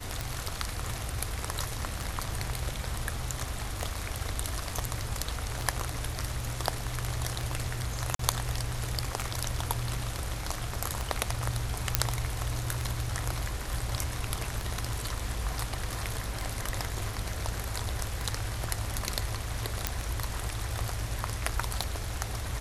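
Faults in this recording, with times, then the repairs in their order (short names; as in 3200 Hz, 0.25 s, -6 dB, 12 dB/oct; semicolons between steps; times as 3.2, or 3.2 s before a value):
tick 33 1/3 rpm
8.15–8.19 gap 43 ms
11.95 pop -2 dBFS
19.87 pop -8 dBFS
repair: de-click; interpolate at 8.15, 43 ms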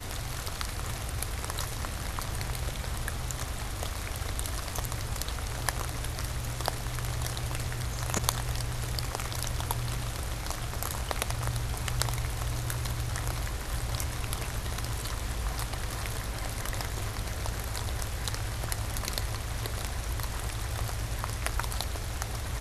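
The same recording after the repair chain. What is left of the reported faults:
none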